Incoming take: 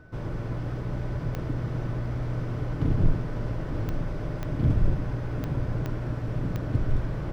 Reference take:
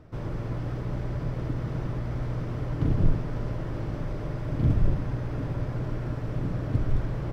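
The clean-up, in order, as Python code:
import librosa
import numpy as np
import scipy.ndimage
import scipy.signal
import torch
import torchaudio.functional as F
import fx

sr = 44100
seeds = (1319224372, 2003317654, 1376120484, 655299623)

y = fx.fix_declick_ar(x, sr, threshold=10.0)
y = fx.notch(y, sr, hz=1500.0, q=30.0)
y = fx.fix_echo_inverse(y, sr, delay_ms=874, level_db=-11.0)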